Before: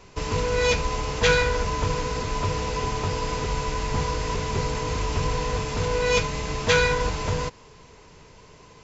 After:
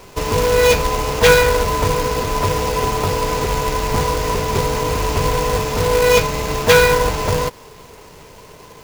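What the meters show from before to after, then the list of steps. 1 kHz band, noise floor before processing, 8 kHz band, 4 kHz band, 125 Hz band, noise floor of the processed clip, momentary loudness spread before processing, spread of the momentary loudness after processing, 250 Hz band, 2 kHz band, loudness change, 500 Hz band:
+9.0 dB, -50 dBFS, n/a, +7.0 dB, +5.5 dB, -42 dBFS, 8 LU, 8 LU, +7.0 dB, +7.0 dB, +8.5 dB, +10.0 dB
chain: bell 610 Hz +5.5 dB 2 oct; companded quantiser 4-bit; gain +5 dB

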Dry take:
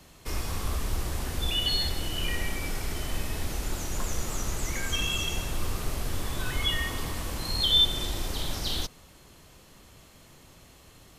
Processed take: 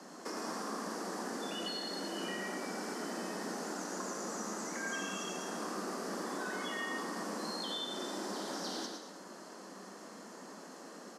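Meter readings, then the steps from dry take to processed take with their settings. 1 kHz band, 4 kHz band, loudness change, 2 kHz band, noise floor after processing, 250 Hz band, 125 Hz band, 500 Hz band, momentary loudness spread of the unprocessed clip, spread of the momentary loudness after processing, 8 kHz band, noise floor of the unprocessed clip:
-0.5 dB, -15.0 dB, -10.0 dB, -5.5 dB, -51 dBFS, -1.0 dB, -20.0 dB, -0.5 dB, 9 LU, 12 LU, -7.0 dB, -54 dBFS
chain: steep high-pass 190 Hz 72 dB/oct; band shelf 2900 Hz -12.5 dB 1.1 oct; compressor 4:1, threshold -45 dBFS, peak gain reduction 13.5 dB; air absorption 74 m; on a send: echo 0.111 s -5.5 dB; on the sum: non-linear reverb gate 0.25 s flat, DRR 6 dB; gain +6.5 dB

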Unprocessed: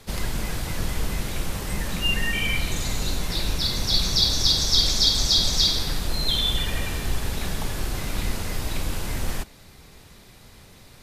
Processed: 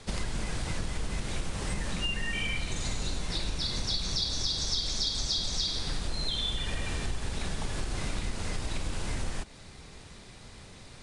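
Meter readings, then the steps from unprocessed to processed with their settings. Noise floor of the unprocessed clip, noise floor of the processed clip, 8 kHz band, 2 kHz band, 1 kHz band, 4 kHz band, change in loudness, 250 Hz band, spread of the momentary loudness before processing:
-49 dBFS, -49 dBFS, -8.0 dB, -7.0 dB, -6.5 dB, -9.5 dB, -9.0 dB, -6.5 dB, 12 LU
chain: steep low-pass 10000 Hz 72 dB/oct; compressor 5:1, threshold -28 dBFS, peak gain reduction 13 dB

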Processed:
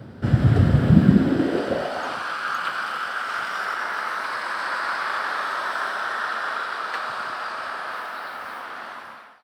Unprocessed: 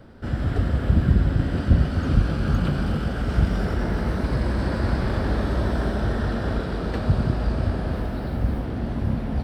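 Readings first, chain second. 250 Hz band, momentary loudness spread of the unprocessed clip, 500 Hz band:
+1.5 dB, 6 LU, -0.5 dB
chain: ending faded out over 0.60 s; high-pass sweep 120 Hz -> 1200 Hz, 0.73–2.34; gain +4.5 dB

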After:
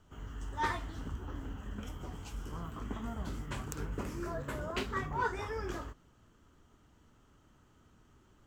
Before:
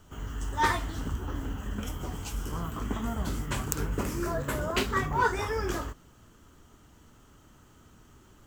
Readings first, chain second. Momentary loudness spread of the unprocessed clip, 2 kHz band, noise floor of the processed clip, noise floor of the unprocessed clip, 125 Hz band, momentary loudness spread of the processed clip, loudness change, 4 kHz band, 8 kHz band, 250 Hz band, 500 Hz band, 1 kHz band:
9 LU, -8.0 dB, -65 dBFS, -57 dBFS, -7.5 dB, 10 LU, -8.0 dB, -9.0 dB, -12.5 dB, -7.5 dB, -7.5 dB, -7.5 dB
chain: high shelf 7700 Hz -11 dB; gain -7.5 dB

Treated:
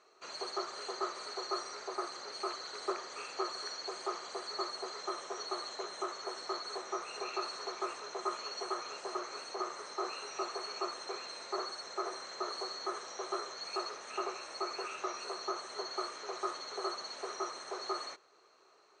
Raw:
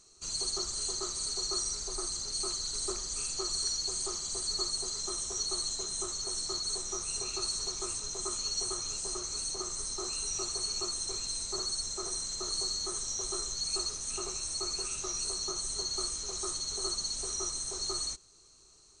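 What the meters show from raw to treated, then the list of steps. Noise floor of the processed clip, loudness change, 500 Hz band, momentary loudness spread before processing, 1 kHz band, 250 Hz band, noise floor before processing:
-64 dBFS, -7.0 dB, +3.5 dB, 3 LU, +8.5 dB, 0.0 dB, -60 dBFS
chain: Chebyshev band-pass 520–2000 Hz, order 2; gain +9 dB

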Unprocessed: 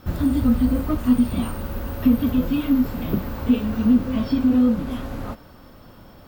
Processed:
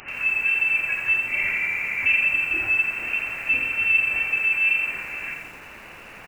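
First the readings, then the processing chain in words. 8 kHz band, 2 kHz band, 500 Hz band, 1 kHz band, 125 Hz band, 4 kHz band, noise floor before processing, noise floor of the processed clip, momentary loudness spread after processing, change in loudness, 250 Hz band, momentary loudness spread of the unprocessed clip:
n/a, +22.5 dB, -13.0 dB, -4.0 dB, under -20 dB, +1.5 dB, -46 dBFS, -43 dBFS, 10 LU, +1.0 dB, -30.0 dB, 12 LU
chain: steep high-pass 180 Hz 36 dB/oct; dynamic EQ 280 Hz, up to -3 dB, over -31 dBFS, Q 3.6; notches 60/120/180/240/300/360/420/480 Hz; spectral gain 1.28–2.2, 440–980 Hz +12 dB; high shelf 2200 Hz +2.5 dB; requantised 6-bit, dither triangular; soft clip -13 dBFS, distortion -19 dB; feedback echo 0.338 s, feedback 51%, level -21 dB; inverted band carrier 2900 Hz; lo-fi delay 85 ms, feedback 55%, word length 8-bit, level -5 dB

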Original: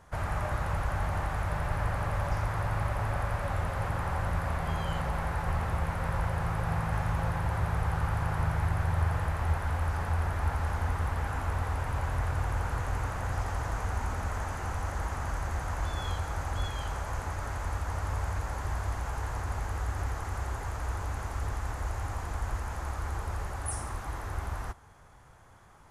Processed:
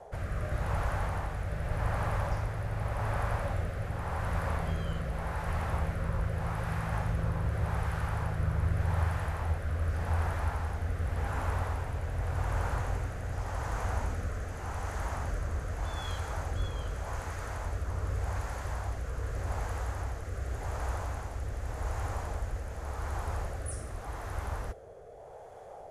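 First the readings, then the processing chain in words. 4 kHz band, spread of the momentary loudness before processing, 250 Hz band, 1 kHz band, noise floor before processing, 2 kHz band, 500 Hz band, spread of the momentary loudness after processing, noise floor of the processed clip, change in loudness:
-2.5 dB, 5 LU, -1.5 dB, -3.5 dB, -49 dBFS, -3.0 dB, 0.0 dB, 6 LU, -45 dBFS, -2.0 dB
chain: band noise 420–830 Hz -46 dBFS; rotary speaker horn 0.85 Hz

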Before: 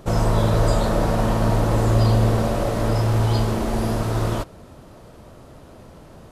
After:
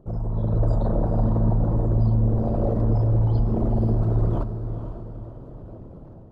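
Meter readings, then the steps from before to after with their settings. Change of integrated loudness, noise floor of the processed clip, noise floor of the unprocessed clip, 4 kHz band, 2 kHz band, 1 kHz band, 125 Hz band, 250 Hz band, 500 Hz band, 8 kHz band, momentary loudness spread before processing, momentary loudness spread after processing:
-2.5 dB, -42 dBFS, -45 dBFS, under -25 dB, under -20 dB, -10.0 dB, -1.0 dB, -2.0 dB, -6.0 dB, under -30 dB, 6 LU, 18 LU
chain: formant sharpening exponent 2; AGC gain up to 10 dB; diffused feedback echo 0.484 s, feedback 40%, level -9 dB; gain -8 dB

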